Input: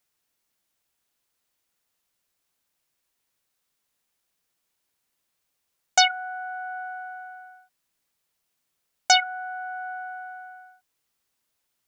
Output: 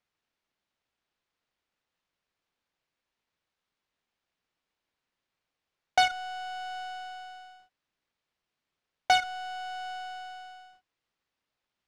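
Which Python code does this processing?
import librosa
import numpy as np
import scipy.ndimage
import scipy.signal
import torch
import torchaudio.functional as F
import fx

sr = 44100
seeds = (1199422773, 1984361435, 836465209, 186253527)

y = fx.halfwave_hold(x, sr)
y = scipy.signal.sosfilt(scipy.signal.butter(2, 4200.0, 'lowpass', fs=sr, output='sos'), y)
y = F.gain(torch.from_numpy(y), -7.5).numpy()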